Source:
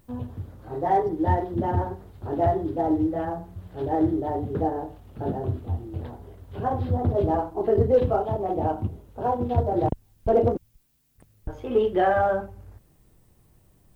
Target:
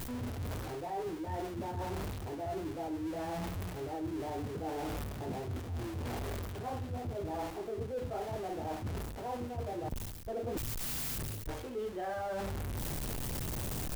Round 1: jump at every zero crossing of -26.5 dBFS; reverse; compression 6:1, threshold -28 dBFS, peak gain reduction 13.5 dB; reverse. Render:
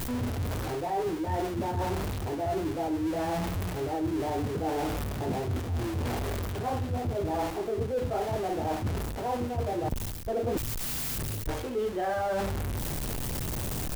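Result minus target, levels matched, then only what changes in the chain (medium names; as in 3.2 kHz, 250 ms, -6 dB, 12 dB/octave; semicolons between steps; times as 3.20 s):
compression: peak gain reduction -8 dB
change: compression 6:1, threshold -37.5 dBFS, peak gain reduction 21.5 dB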